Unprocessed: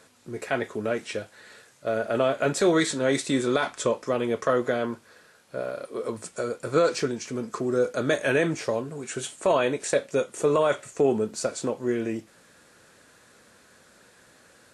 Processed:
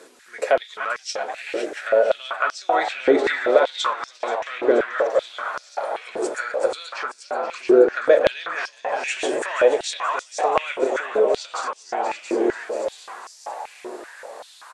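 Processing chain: backward echo that repeats 339 ms, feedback 59%, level -8.5 dB; low-pass that closes with the level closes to 2.6 kHz, closed at -21.5 dBFS; in parallel at +1.5 dB: compression, threshold -30 dBFS, peak gain reduction 13 dB; 3.57–4.52 s: on the sum: transient shaper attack -2 dB, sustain -7 dB; 7.09–7.51 s: distance through air 370 m; on a send: frequency-shifting echo 480 ms, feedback 64%, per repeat +87 Hz, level -11 dB; on the sum: step-sequenced high-pass 5.2 Hz 360–5300 Hz; trim -1 dB

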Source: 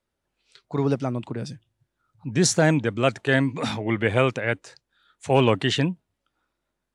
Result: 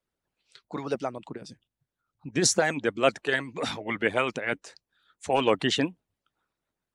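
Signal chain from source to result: harmonic-percussive split harmonic -18 dB; 1.18–2.34 s: level held to a coarse grid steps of 9 dB

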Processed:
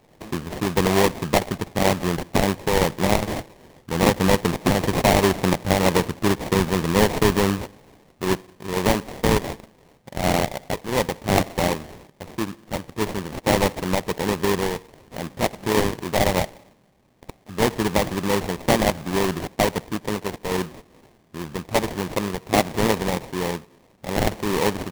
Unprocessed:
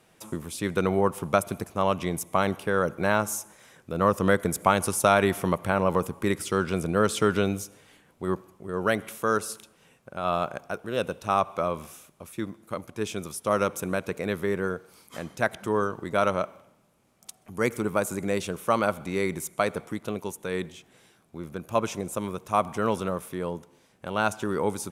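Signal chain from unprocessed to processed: in parallel at -1 dB: peak limiter -12.5 dBFS, peak gain reduction 7 dB; on the sum: sample-rate reducer 1.4 kHz, jitter 20%

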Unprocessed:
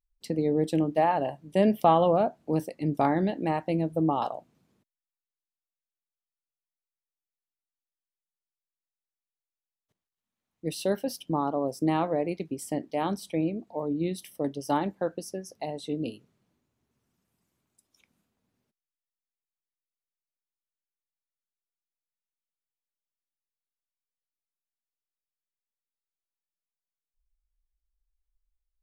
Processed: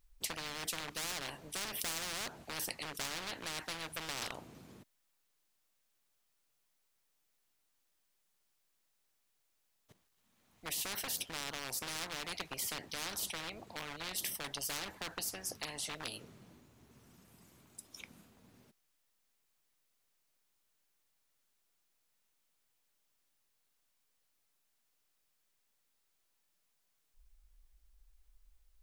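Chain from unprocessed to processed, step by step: overload inside the chain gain 25.5 dB; spectrum-flattening compressor 10:1; trim +12 dB

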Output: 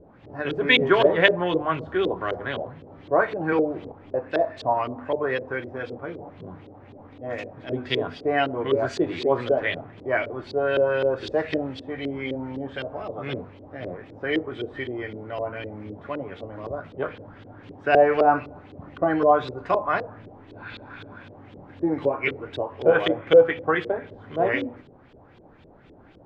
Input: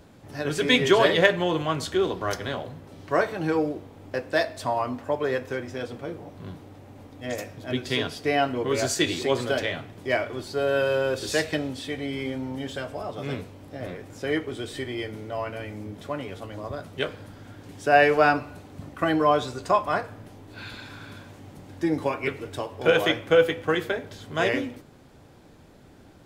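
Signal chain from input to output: hum notches 50/100/150/200/250 Hz; LFO low-pass saw up 3.9 Hz 400–3700 Hz; 3.52–3.92 s: three bands compressed up and down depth 100%; trim -1 dB

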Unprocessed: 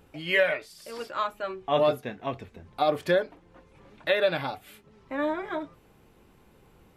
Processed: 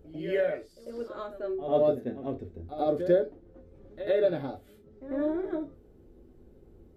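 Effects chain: tilt shelf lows +9.5 dB, about 760 Hz; reverse echo 95 ms -11 dB; short-mantissa float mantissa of 8-bit; fifteen-band graphic EQ 160 Hz -9 dB, 400 Hz +4 dB, 1 kHz -10 dB, 2.5 kHz -8 dB, 10 kHz -3 dB; gated-style reverb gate 90 ms falling, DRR 7.5 dB; attacks held to a fixed rise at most 440 dB/s; trim -4 dB

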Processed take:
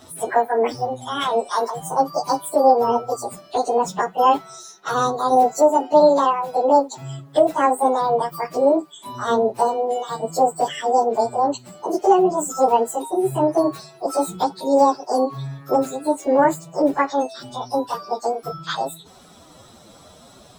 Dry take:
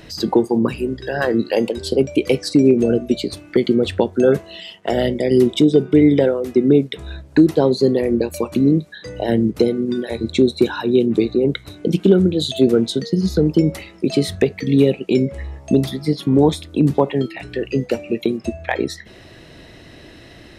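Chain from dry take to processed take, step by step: frequency-domain pitch shifter +12 st

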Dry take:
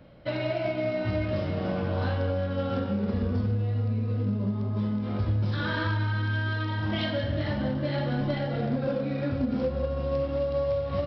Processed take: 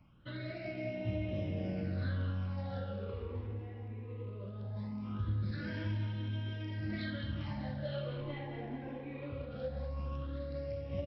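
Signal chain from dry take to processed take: phase shifter stages 8, 0.2 Hz, lowest notch 170–1400 Hz; on a send: feedback delay 214 ms, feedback 51%, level -10 dB; on the sum: trim -8.5 dB

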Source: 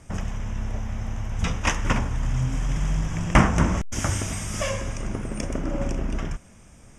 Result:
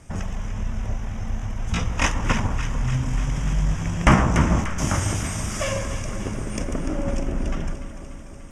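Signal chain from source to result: tempo 0.82×; echo whose repeats swap between lows and highs 147 ms, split 1.1 kHz, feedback 81%, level -8.5 dB; trim +1 dB

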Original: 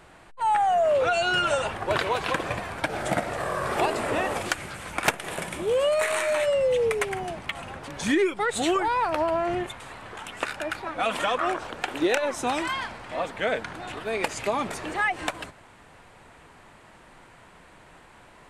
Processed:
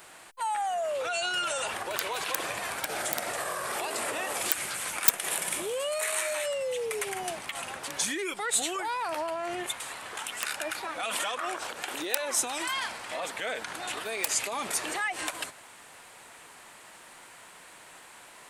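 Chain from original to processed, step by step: integer overflow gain 13 dB; peak limiter -24.5 dBFS, peak gain reduction 11.5 dB; RIAA curve recording

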